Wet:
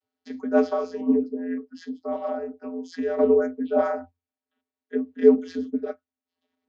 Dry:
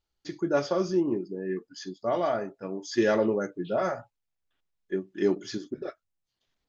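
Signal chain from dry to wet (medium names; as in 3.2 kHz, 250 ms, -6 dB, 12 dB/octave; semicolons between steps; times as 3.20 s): treble shelf 5.1 kHz -7 dB; 1.56–3.18 s: compression 2:1, threshold -38 dBFS, peak gain reduction 10.5 dB; vocoder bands 32, square 86.3 Hz; trim +7 dB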